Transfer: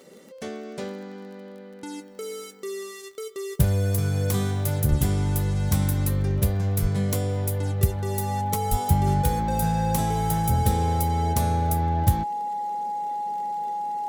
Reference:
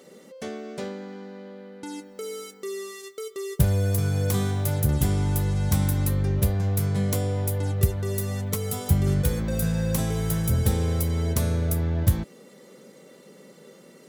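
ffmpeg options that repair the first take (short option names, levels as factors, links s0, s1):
-filter_complex "[0:a]adeclick=t=4,bandreject=f=830:w=30,asplit=3[s0][s1][s2];[s0]afade=t=out:st=4.89:d=0.02[s3];[s1]highpass=f=140:w=0.5412,highpass=f=140:w=1.3066,afade=t=in:st=4.89:d=0.02,afade=t=out:st=5.01:d=0.02[s4];[s2]afade=t=in:st=5.01:d=0.02[s5];[s3][s4][s5]amix=inputs=3:normalize=0,asplit=3[s6][s7][s8];[s6]afade=t=out:st=6.81:d=0.02[s9];[s7]highpass=f=140:w=0.5412,highpass=f=140:w=1.3066,afade=t=in:st=6.81:d=0.02,afade=t=out:st=6.93:d=0.02[s10];[s8]afade=t=in:st=6.93:d=0.02[s11];[s9][s10][s11]amix=inputs=3:normalize=0,asplit=3[s12][s13][s14];[s12]afade=t=out:st=8.7:d=0.02[s15];[s13]highpass=f=140:w=0.5412,highpass=f=140:w=1.3066,afade=t=in:st=8.7:d=0.02,afade=t=out:st=8.82:d=0.02[s16];[s14]afade=t=in:st=8.82:d=0.02[s17];[s15][s16][s17]amix=inputs=3:normalize=0"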